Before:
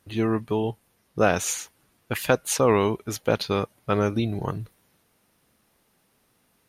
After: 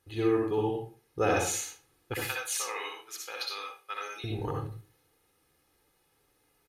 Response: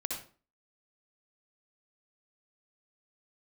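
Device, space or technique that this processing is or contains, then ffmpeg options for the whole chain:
microphone above a desk: -filter_complex "[0:a]asettb=1/sr,asplit=3[a][b][c];[a]atrim=end=2.244[d];[b]atrim=start=2.24:end=4.24,asetpts=PTS-STARTPTS,afade=t=in:d=0.004:c=qsin,afade=t=out:st=1.996:d=0.004:c=qsin,highpass=1.5k[e];[c]atrim=start=4.236[f];[d][e]acrossfade=d=0.004:c1=hsin:c2=qsin[g];[g][f]acrossfade=d=0.004:c1=qsin:c2=hsin,aecho=1:1:2.4:0.68[h];[1:a]atrim=start_sample=2205[i];[h][i]afir=irnorm=-1:irlink=0,volume=-7.5dB"

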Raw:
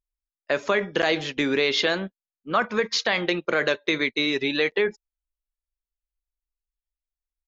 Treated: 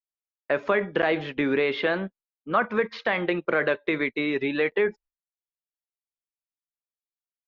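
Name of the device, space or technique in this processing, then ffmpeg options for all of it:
hearing-loss simulation: -filter_complex "[0:a]lowpass=2.4k,agate=range=-33dB:threshold=-47dB:ratio=3:detection=peak,acrossover=split=3600[a][b];[b]acompressor=threshold=-48dB:ratio=4:attack=1:release=60[c];[a][c]amix=inputs=2:normalize=0"

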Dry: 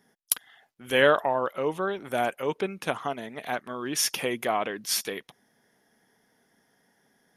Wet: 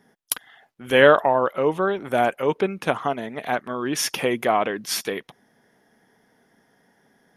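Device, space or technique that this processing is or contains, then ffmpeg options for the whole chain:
behind a face mask: -af "highshelf=f=3.1k:g=-8,volume=7dB"

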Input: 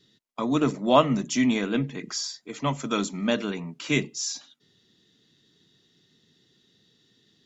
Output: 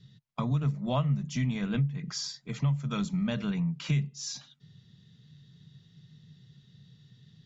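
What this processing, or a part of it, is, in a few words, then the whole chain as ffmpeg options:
jukebox: -af "lowpass=5.9k,lowshelf=f=210:t=q:w=3:g=13,acompressor=threshold=-26dB:ratio=4,volume=-1.5dB"

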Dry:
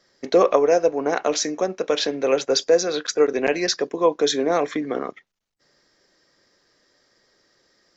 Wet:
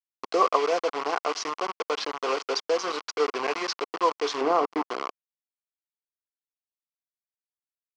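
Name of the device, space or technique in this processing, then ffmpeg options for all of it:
hand-held game console: -filter_complex "[0:a]acrusher=bits=3:mix=0:aa=0.000001,highpass=490,equalizer=f=570:t=q:w=4:g=-9,equalizer=f=1.1k:t=q:w=4:g=7,equalizer=f=1.7k:t=q:w=4:g=-8,equalizer=f=2.5k:t=q:w=4:g=-3,equalizer=f=3.7k:t=q:w=4:g=-10,lowpass=f=4.8k:w=0.5412,lowpass=f=4.8k:w=1.3066,asettb=1/sr,asplit=3[a][b][c];[a]atrim=end=4.414[d];[b]atrim=start=4.41:end=4.88,asetpts=PTS-STARTPTS,afade=t=in:d=0.004:c=qsin,afade=t=out:st=0.466:d=0.004:c=qsin,tiltshelf=f=1.3k:g=7[e];[c]atrim=start=4.876[f];[d][e]acrossfade=d=0.004:c1=hsin:c2=qsin[g];[g][f]acrossfade=d=0.004:c1=qsin:c2=hsin,volume=-2dB"

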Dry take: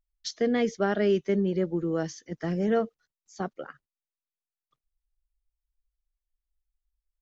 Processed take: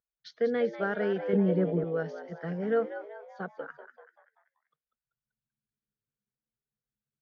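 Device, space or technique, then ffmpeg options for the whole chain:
frequency-shifting delay pedal into a guitar cabinet: -filter_complex "[0:a]asplit=6[a][b][c][d][e][f];[b]adelay=193,afreqshift=99,volume=-10dB[g];[c]adelay=386,afreqshift=198,volume=-16.4dB[h];[d]adelay=579,afreqshift=297,volume=-22.8dB[i];[e]adelay=772,afreqshift=396,volume=-29.1dB[j];[f]adelay=965,afreqshift=495,volume=-35.5dB[k];[a][g][h][i][j][k]amix=inputs=6:normalize=0,highpass=97,equalizer=f=110:t=q:w=4:g=-9,equalizer=f=160:t=q:w=4:g=5,equalizer=f=320:t=q:w=4:g=-7,equalizer=f=480:t=q:w=4:g=8,equalizer=f=1.5k:t=q:w=4:g=10,equalizer=f=2.7k:t=q:w=4:g=-3,lowpass=f=3.9k:w=0.5412,lowpass=f=3.9k:w=1.3066,asettb=1/sr,asplit=3[l][m][n];[l]atrim=end=1.334[o];[m]atrim=start=1.33:end=1.84,asetpts=PTS-STARTPTS,afade=t=in:d=0.004:c=qsin,afade=t=out:st=0.506:d=0.004:c=qsin,lowshelf=f=470:g=9.5[p];[n]atrim=start=1.836[q];[o][p]acrossfade=d=0.004:c1=hsin:c2=qsin[r];[r][q]acrossfade=d=0.004:c1=qsin:c2=hsin,volume=-7dB"

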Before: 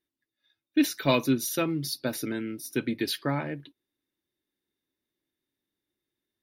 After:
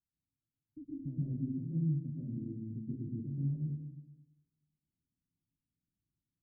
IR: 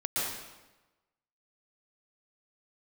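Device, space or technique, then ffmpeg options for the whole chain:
club heard from the street: -filter_complex "[0:a]alimiter=limit=-22dB:level=0:latency=1:release=420,lowpass=f=180:w=0.5412,lowpass=f=180:w=1.3066[a];[1:a]atrim=start_sample=2205[b];[a][b]afir=irnorm=-1:irlink=0"

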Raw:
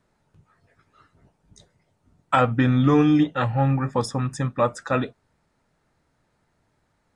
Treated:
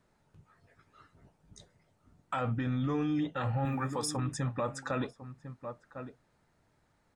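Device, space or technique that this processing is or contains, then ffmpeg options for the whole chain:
stacked limiters: -filter_complex "[0:a]asettb=1/sr,asplit=3[a][b][c];[a]atrim=end=3.654[d];[b]atrim=start=3.65:end=4.17,asetpts=PTS-STARTPTS,afade=t=in:d=0.004:c=qsin,afade=t=out:st=0.516:d=0.004:c=qsin,aemphasis=mode=production:type=bsi[e];[c]atrim=start=4.166[f];[d][e]acrossfade=d=0.004:c1=hsin:c2=qsin[g];[g][f]acrossfade=d=0.004:c1=qsin:c2=hsin,asplit=2[h][i];[i]adelay=1050,volume=-17dB,highshelf=f=4k:g=-23.6[j];[h][j]amix=inputs=2:normalize=0,alimiter=limit=-12.5dB:level=0:latency=1:release=34,alimiter=limit=-16dB:level=0:latency=1:release=464,alimiter=limit=-22dB:level=0:latency=1:release=25,volume=-2.5dB"

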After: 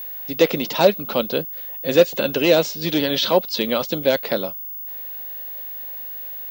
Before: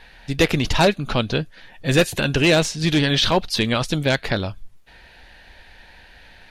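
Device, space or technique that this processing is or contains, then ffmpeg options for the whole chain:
old television with a line whistle: -af "highpass=f=190:w=0.5412,highpass=f=190:w=1.3066,equalizer=f=530:t=q:w=4:g=9,equalizer=f=1.7k:t=q:w=4:g=-6,equalizer=f=2.4k:t=q:w=4:g=-3,lowpass=f=6.5k:w=0.5412,lowpass=f=6.5k:w=1.3066,aeval=exprs='val(0)+0.0398*sin(2*PI*15625*n/s)':c=same,volume=-1.5dB"

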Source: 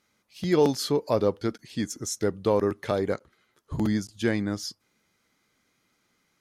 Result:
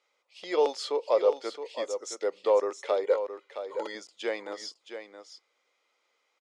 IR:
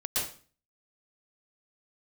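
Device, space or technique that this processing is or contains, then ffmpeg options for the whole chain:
phone speaker on a table: -filter_complex "[0:a]highpass=f=480:w=0.5412,highpass=f=480:w=1.3066,equalizer=f=520:t=q:w=4:g=5,equalizer=f=1.6k:t=q:w=4:g=-9,equalizer=f=4.3k:t=q:w=4:g=-5,equalizer=f=6.1k:t=q:w=4:g=-8,lowpass=f=7k:w=0.5412,lowpass=f=7k:w=1.3066,equalizer=f=650:w=6.9:g=-2.5,asettb=1/sr,asplit=3[a][b][c];[a]atrim=end=3.044[d];[b]atrim=start=3.04:end=3.95,asetpts=PTS-STARTPTS,afade=t=in:d=0.004:c=qsin,afade=t=out:st=0.906:d=0.004:c=qsin,aecho=1:1:2.1:0.65,atrim=end_sample=40131[e];[c]atrim=start=3.946[f];[d][e]acrossfade=d=0.004:c1=hsin:c2=qsin[g];[g][f]acrossfade=d=0.004:c1=qsin:c2=hsin,aecho=1:1:668:0.335"

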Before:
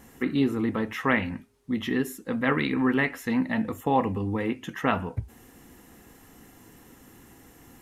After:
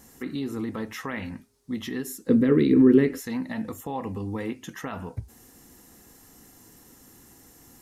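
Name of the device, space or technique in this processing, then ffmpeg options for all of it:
over-bright horn tweeter: -filter_complex "[0:a]highshelf=f=3.7k:t=q:w=1.5:g=6.5,alimiter=limit=-18.5dB:level=0:latency=1:release=97,asettb=1/sr,asplit=3[a][b][c];[a]atrim=end=2.294[d];[b]atrim=start=2.29:end=3.2,asetpts=PTS-STARTPTS,afade=t=in:d=0.004:c=qsin,afade=t=out:st=0.906:d=0.004:c=qsin,lowshelf=f=550:t=q:w=3:g=11[e];[c]atrim=start=3.196[f];[d][e]acrossfade=d=0.004:c1=hsin:c2=qsin[g];[g][f]acrossfade=d=0.004:c1=qsin:c2=hsin,volume=-3dB"

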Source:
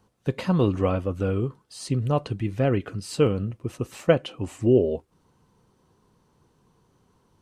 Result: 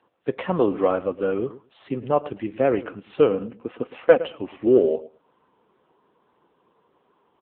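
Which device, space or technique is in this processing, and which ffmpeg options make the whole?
telephone: -filter_complex "[0:a]asettb=1/sr,asplit=3[a][b][c];[a]atrim=end=3.304[d];[b]atrim=start=3.3:end=4.18,asetpts=PTS-STARTPTS,afade=t=in:d=0.004:c=qsin,afade=t=out:st=0.876:d=0.004:c=qsin,aecho=1:1:4.1:0.32,atrim=end_sample=38808[e];[c]atrim=start=4.176[f];[d][e]acrossfade=d=0.004:c1=hsin:c2=qsin[g];[g][f]acrossfade=d=0.004:c1=qsin:c2=hsin,highpass=360,lowpass=3.4k,asplit=2[h][i];[i]adelay=110,lowpass=f=1.4k:p=1,volume=-16dB,asplit=2[j][k];[k]adelay=110,lowpass=f=1.4k:p=1,volume=0.15[l];[h][j][l]amix=inputs=3:normalize=0,asoftclip=type=tanh:threshold=-9dB,volume=6.5dB" -ar 8000 -c:a libopencore_amrnb -b:a 6700

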